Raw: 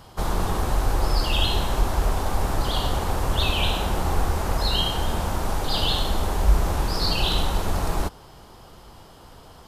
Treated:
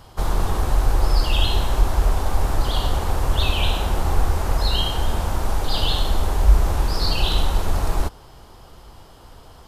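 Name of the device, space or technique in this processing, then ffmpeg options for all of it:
low shelf boost with a cut just above: -af "lowshelf=frequency=85:gain=6,equalizer=frequency=180:width_type=o:width=0.86:gain=-3"

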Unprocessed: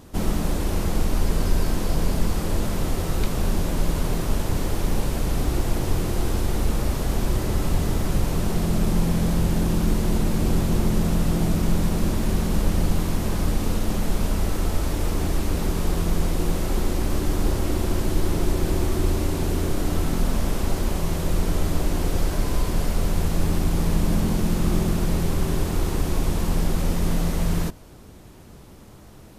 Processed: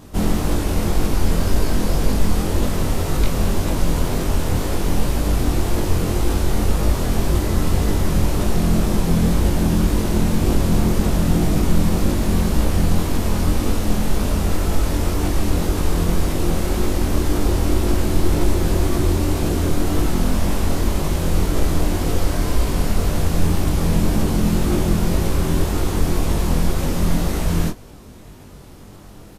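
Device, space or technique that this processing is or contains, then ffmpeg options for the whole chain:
double-tracked vocal: -filter_complex "[0:a]asplit=2[link_01][link_02];[link_02]adelay=20,volume=-10.5dB[link_03];[link_01][link_03]amix=inputs=2:normalize=0,flanger=delay=20:depth=4.3:speed=1.9,volume=7dB"

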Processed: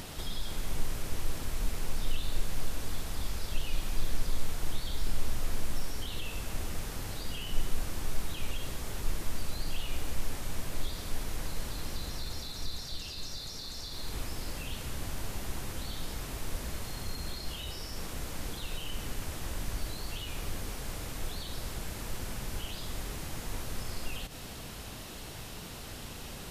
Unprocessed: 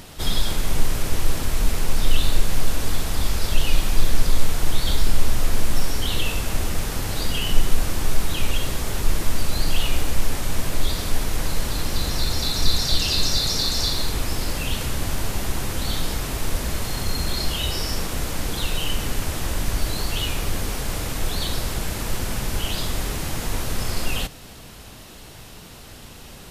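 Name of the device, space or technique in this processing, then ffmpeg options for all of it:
de-esser from a sidechain: -filter_complex "[0:a]asplit=2[link_01][link_02];[link_02]highpass=frequency=6900:poles=1,apad=whole_len=1168767[link_03];[link_01][link_03]sidechaincompress=threshold=-46dB:ratio=6:attack=3.6:release=96"

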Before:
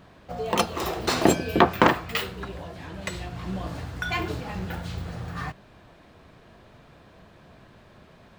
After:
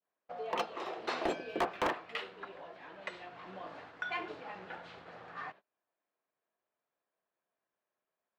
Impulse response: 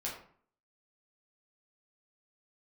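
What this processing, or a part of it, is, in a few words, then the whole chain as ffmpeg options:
walkie-talkie: -af "adynamicequalizer=threshold=0.0141:dfrequency=1300:dqfactor=0.7:tfrequency=1300:tqfactor=0.7:attack=5:release=100:ratio=0.375:range=3:mode=cutabove:tftype=bell,highpass=470,lowpass=2700,asoftclip=type=hard:threshold=-19.5dB,agate=range=-28dB:threshold=-46dB:ratio=16:detection=peak,volume=-6.5dB"

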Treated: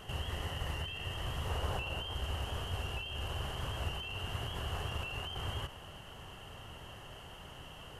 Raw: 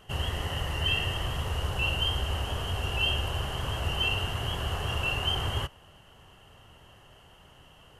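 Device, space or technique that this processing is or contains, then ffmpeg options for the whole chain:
de-esser from a sidechain: -filter_complex "[0:a]asplit=2[link_01][link_02];[link_02]highpass=4900,apad=whole_len=352376[link_03];[link_01][link_03]sidechaincompress=threshold=-57dB:ratio=8:attack=1.8:release=30,asettb=1/sr,asplit=3[link_04][link_05][link_06];[link_04]atrim=end=1.494[link_07];[link_05]atrim=start=1.49:end=2.14,asetpts=PTS-STARTPTS,afade=type=in:duration=0.004:curve=qsin,afade=type=out:start_time=0.646:duration=0.004:curve=qsin,equalizer=frequency=660:width=0.55:gain=5[link_08];[link_06]atrim=start=2.136[link_09];[link_07][link_08]acrossfade=duration=0.004:curve1=hsin:curve2=qsin[link_10];[link_10][link_09]acrossfade=duration=0.004:curve1=qsin:curve2=hsin,volume=5dB"

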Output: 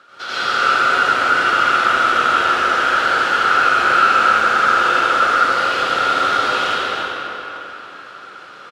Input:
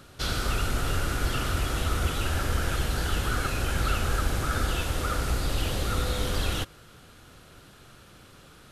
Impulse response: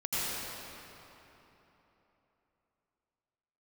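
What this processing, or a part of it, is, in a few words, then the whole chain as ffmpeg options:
station announcement: -filter_complex "[0:a]highpass=490,lowpass=4400,equalizer=frequency=1400:width_type=o:width=0.44:gain=10,aecho=1:1:78.72|271.1:0.355|0.447[link_01];[1:a]atrim=start_sample=2205[link_02];[link_01][link_02]afir=irnorm=-1:irlink=0,volume=3.5dB"

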